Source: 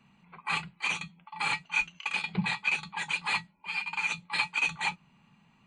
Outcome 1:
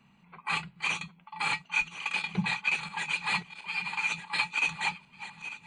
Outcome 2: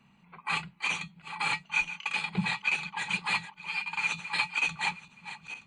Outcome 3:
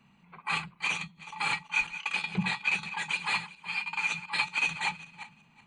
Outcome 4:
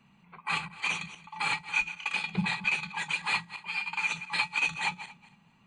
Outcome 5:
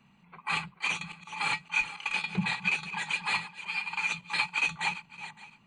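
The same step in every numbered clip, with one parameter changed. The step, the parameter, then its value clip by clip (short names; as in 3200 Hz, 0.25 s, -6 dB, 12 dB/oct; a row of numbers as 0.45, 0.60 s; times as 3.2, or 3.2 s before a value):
regenerating reverse delay, time: 0.722, 0.462, 0.187, 0.115, 0.281 s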